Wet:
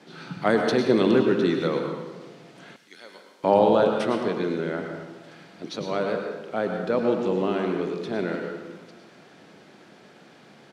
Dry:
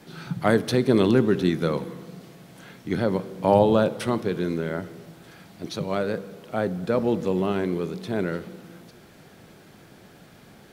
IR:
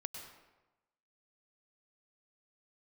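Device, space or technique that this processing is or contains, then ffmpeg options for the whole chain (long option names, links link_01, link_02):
supermarket ceiling speaker: -filter_complex "[0:a]highpass=210,lowpass=6100[link_01];[1:a]atrim=start_sample=2205[link_02];[link_01][link_02]afir=irnorm=-1:irlink=0,asettb=1/sr,asplit=3[link_03][link_04][link_05];[link_03]atrim=end=2.764[link_06];[link_04]atrim=start=2.76:end=3.44,asetpts=PTS-STARTPTS,afade=type=in:duration=0.004:curve=qsin,afade=type=out:start_time=0.676:duration=0.004:curve=qsin,aderivative[link_07];[link_05]atrim=start=3.436[link_08];[link_06][link_07]acrossfade=duration=0.004:curve1=hsin:curve2=qsin[link_09];[link_09][link_08]acrossfade=duration=0.004:curve1=qsin:curve2=hsin,aecho=1:1:118:0.158,volume=3dB"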